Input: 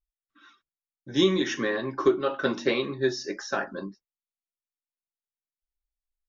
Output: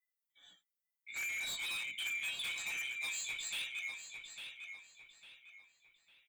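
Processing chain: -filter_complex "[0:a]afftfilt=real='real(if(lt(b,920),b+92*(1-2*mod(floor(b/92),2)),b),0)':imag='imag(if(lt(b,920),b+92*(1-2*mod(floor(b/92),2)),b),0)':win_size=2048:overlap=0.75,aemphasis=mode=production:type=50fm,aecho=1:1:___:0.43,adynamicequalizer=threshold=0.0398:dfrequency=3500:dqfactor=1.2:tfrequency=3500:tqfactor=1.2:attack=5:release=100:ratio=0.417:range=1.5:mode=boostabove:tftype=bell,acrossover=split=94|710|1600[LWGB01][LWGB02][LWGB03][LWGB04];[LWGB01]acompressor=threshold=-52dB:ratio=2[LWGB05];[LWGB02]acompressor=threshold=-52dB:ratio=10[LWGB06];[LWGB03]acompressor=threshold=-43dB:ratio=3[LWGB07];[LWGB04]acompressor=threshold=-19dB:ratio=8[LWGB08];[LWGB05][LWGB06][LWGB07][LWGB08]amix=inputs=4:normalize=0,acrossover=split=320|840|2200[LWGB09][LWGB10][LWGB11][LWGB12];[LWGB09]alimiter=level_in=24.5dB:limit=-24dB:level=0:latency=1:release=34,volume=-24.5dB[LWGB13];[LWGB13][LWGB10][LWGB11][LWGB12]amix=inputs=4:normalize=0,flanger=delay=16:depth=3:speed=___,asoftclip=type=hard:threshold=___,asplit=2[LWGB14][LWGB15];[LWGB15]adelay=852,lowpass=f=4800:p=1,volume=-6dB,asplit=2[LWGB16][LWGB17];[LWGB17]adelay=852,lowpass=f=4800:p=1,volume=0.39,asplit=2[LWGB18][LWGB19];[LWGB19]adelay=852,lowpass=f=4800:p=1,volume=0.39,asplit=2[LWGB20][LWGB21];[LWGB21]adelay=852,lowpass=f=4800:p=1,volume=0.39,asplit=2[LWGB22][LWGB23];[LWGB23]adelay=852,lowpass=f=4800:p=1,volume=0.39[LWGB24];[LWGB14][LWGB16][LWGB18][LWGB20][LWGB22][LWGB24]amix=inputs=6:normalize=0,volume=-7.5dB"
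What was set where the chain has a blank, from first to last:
6, 0.37, -30dB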